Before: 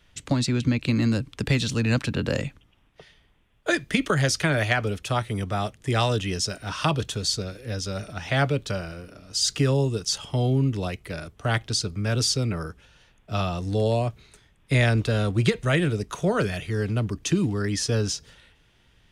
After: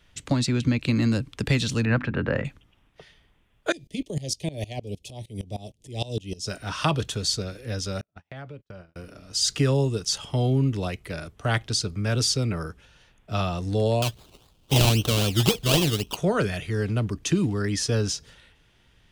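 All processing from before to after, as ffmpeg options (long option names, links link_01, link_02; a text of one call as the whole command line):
ffmpeg -i in.wav -filter_complex "[0:a]asettb=1/sr,asplit=3[link_01][link_02][link_03];[link_01]atrim=end=1.854[link_04];[link_02]atrim=start=1.85:end=2.45,asetpts=PTS-STARTPTS,afade=type=in:duration=0.004:curve=qsin,afade=type=out:start_time=0.596:duration=0.004:curve=qsin,lowpass=frequency=1700:width_type=q:width=1.6,bandreject=frequency=50:width_type=h:width=6,bandreject=frequency=100:width_type=h:width=6,bandreject=frequency=150:width_type=h:width=6,bandreject=frequency=200:width_type=h:width=6,bandreject=frequency=250:width_type=h:width=6,bandreject=frequency=300:width_type=h:width=6,bandreject=frequency=350:width_type=h:width=6[link_05];[link_03]atrim=start=2.446[link_06];[link_04][link_05]acrossfade=duration=0.004:curve1=hsin:curve2=qsin[link_07];[link_07][link_06]acrossfade=duration=0.004:curve1=qsin:curve2=hsin,asettb=1/sr,asplit=3[link_08][link_09][link_10];[link_08]atrim=end=3.724[link_11];[link_09]atrim=start=3.72:end=6.47,asetpts=PTS-STARTPTS,afade=type=in:duration=0.004:curve=qsin,afade=type=out:start_time=2.746:duration=0.004:curve=qsin,asuperstop=centerf=1400:order=4:qfactor=0.59,aeval=exprs='val(0)*pow(10,-21*if(lt(mod(-6.5*n/s,1),2*abs(-6.5)/1000),1-mod(-6.5*n/s,1)/(2*abs(-6.5)/1000),(mod(-6.5*n/s,1)-2*abs(-6.5)/1000)/(1-2*abs(-6.5)/1000))/20)':channel_layout=same[link_12];[link_10]atrim=start=6.466[link_13];[link_11][link_12]acrossfade=duration=0.004:curve1=hsin:curve2=qsin[link_14];[link_14][link_13]acrossfade=duration=0.004:curve1=qsin:curve2=hsin,asettb=1/sr,asplit=3[link_15][link_16][link_17];[link_15]atrim=end=8.014[link_18];[link_16]atrim=start=8.01:end=8.96,asetpts=PTS-STARTPTS,afade=type=in:duration=0.004:curve=qsin,afade=type=out:start_time=0.946:duration=0.004:curve=qsin,lowpass=frequency=1900:poles=1,agate=range=-45dB:threshold=-33dB:ratio=16:release=100:detection=peak,acompressor=threshold=-42dB:ratio=3:attack=3.2:release=140:knee=1:detection=peak[link_19];[link_17]atrim=start=8.956[link_20];[link_18][link_19]acrossfade=duration=0.004:curve1=hsin:curve2=qsin[link_21];[link_21][link_20]acrossfade=duration=0.004:curve1=qsin:curve2=hsin,asettb=1/sr,asplit=3[link_22][link_23][link_24];[link_22]atrim=end=14.024[link_25];[link_23]atrim=start=14.02:end=16.17,asetpts=PTS-STARTPTS,afade=type=in:duration=0.004:curve=qsin,afade=type=out:start_time=2.146:duration=0.004:curve=qsin,acrusher=samples=21:mix=1:aa=0.000001:lfo=1:lforange=12.6:lforate=3.8,highshelf=frequency=2400:width_type=q:width=3:gain=6.5[link_26];[link_24]atrim=start=16.166[link_27];[link_25][link_26]acrossfade=duration=0.004:curve1=hsin:curve2=qsin[link_28];[link_28][link_27]acrossfade=duration=0.004:curve1=qsin:curve2=hsin" out.wav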